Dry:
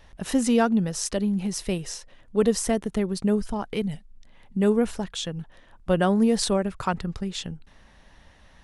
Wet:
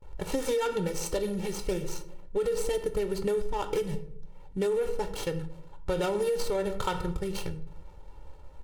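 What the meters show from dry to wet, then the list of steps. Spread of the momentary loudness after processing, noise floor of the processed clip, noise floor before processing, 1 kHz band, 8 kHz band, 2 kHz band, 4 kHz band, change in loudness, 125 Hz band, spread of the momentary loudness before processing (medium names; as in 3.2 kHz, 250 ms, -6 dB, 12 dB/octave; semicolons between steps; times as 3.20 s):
12 LU, -47 dBFS, -54 dBFS, -4.5 dB, -8.0 dB, -5.5 dB, -7.0 dB, -6.0 dB, -6.5 dB, 13 LU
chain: median filter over 25 samples; peaking EQ 120 Hz -3.5 dB 2.2 oct; comb 2.2 ms, depth 97%; simulated room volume 120 m³, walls mixed, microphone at 0.31 m; peak limiter -18 dBFS, peak gain reduction 10.5 dB; peaking EQ 9.1 kHz +9 dB 2.3 oct; gate with hold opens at -41 dBFS; compression, threshold -27 dBFS, peak gain reduction 6.5 dB; tape noise reduction on one side only decoder only; trim +2 dB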